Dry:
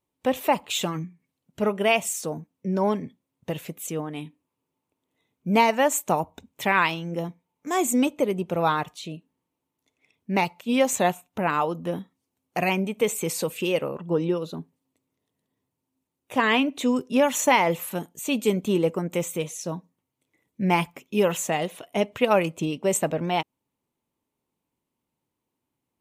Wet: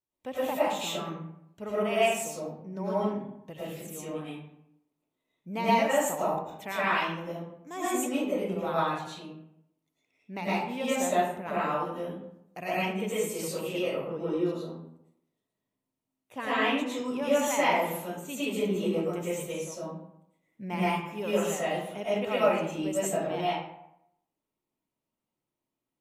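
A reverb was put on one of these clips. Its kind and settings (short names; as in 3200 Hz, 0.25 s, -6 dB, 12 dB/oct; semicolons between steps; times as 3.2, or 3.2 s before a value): digital reverb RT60 0.78 s, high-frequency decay 0.6×, pre-delay 70 ms, DRR -10 dB; gain -15 dB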